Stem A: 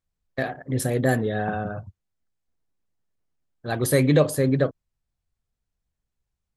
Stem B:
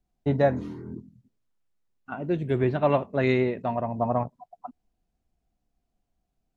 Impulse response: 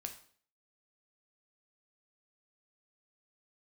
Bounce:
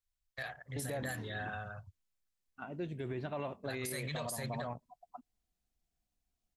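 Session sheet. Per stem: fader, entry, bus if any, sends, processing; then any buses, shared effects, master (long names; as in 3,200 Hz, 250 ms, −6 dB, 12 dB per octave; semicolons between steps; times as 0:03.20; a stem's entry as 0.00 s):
−1.5 dB, 0.00 s, no send, guitar amp tone stack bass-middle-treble 10-0-10
−11.5 dB, 0.50 s, no send, high-shelf EQ 2,200 Hz +9 dB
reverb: not used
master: brickwall limiter −30 dBFS, peak gain reduction 15.5 dB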